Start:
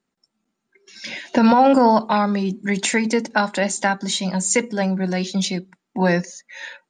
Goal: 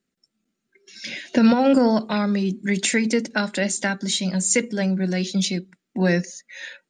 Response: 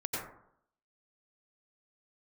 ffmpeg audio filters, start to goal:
-af "equalizer=frequency=910:width_type=o:width=0.78:gain=-13"

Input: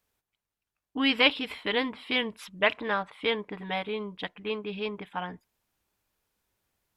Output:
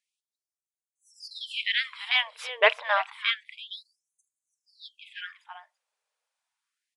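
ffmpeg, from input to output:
ffmpeg -i in.wav -af "agate=range=-8dB:threshold=-52dB:ratio=16:detection=peak,aecho=1:1:334:0.2,aresample=22050,aresample=44100,aeval=exprs='0.473*(cos(1*acos(clip(val(0)/0.473,-1,1)))-cos(1*PI/2))+0.00531*(cos(4*acos(clip(val(0)/0.473,-1,1)))-cos(4*PI/2))':channel_layout=same,afftfilt=real='re*gte(b*sr/1024,420*pow(6300/420,0.5+0.5*sin(2*PI*0.29*pts/sr)))':imag='im*gte(b*sr/1024,420*pow(6300/420,0.5+0.5*sin(2*PI*0.29*pts/sr)))':win_size=1024:overlap=0.75,volume=4.5dB" out.wav

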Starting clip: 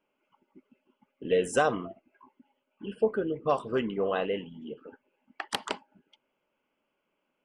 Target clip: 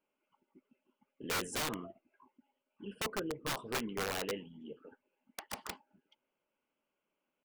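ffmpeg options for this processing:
ffmpeg -i in.wav -af "atempo=1,aeval=exprs='(mod(12.6*val(0)+1,2)-1)/12.6':channel_layout=same,volume=-7.5dB" out.wav

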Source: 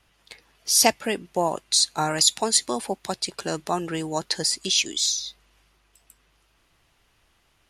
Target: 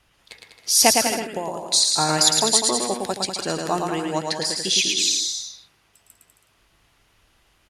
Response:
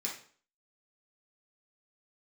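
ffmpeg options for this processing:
-filter_complex "[0:a]asettb=1/sr,asplit=3[link_01][link_02][link_03];[link_01]atrim=end=1.004[link_04];[link_02]atrim=start=1:end=1.59,asetpts=PTS-STARTPTS,afade=type=in:duration=0.004:curve=qsin,afade=type=out:start_time=0.586:duration=0.004:curve=qsin,acompressor=threshold=-27dB:ratio=5[link_05];[link_03]atrim=start=1.586[link_06];[link_04][link_05]acrossfade=duration=0.004:curve1=hsin:curve2=qsin[link_07];[link_07][link_06]acrossfade=duration=0.004:curve1=qsin:curve2=hsin,asettb=1/sr,asplit=3[link_08][link_09][link_10];[link_08]atrim=end=3.874[link_11];[link_09]atrim=start=3.87:end=4.57,asetpts=PTS-STARTPTS,afade=type=in:duration=0.004:curve=qsin,afade=type=out:start_time=0.696:duration=0.004:curve=qsin,bass=frequency=250:gain=-4,treble=frequency=4000:gain=-5[link_12];[link_10]atrim=start=4.566[link_13];[link_11][link_12]acrossfade=duration=0.004:curve1=hsin:curve2=qsin[link_14];[link_14][link_13]acrossfade=duration=0.004:curve1=qsin:curve2=hsin,aecho=1:1:110|198|268.4|324.7|369.8:0.631|0.398|0.251|0.158|0.1,volume=1.5dB"

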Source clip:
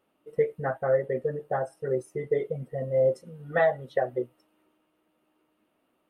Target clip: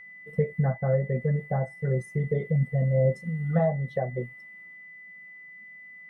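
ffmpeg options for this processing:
ffmpeg -i in.wav -filter_complex "[0:a]lowshelf=frequency=240:width_type=q:width=3:gain=9,acrossover=split=900[link_01][link_02];[link_02]acompressor=threshold=-48dB:ratio=6[link_03];[link_01][link_03]amix=inputs=2:normalize=0,aeval=exprs='val(0)+0.00631*sin(2*PI*2000*n/s)':channel_layout=same" out.wav

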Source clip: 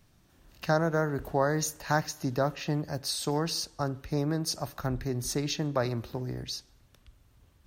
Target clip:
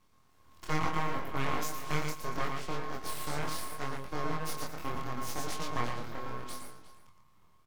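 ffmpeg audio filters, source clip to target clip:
ffmpeg -i in.wav -filter_complex "[0:a]aeval=exprs='val(0)*sin(2*PI*540*n/s)':channel_layout=same,asplit=2[link_01][link_02];[link_02]aecho=0:1:114|228|342:0.596|0.101|0.0172[link_03];[link_01][link_03]amix=inputs=2:normalize=0,aeval=exprs='abs(val(0))':channel_layout=same,asplit=2[link_04][link_05];[link_05]adelay=355.7,volume=-12dB,highshelf=frequency=4000:gain=-8[link_06];[link_04][link_06]amix=inputs=2:normalize=0,flanger=delay=22.5:depth=3.9:speed=0.74,volume=1dB" out.wav

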